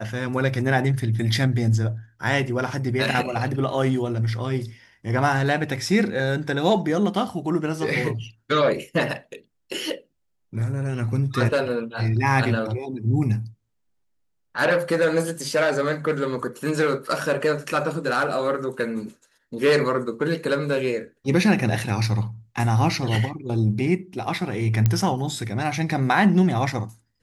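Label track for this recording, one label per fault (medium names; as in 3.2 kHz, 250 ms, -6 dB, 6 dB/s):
24.860000	24.860000	pop -7 dBFS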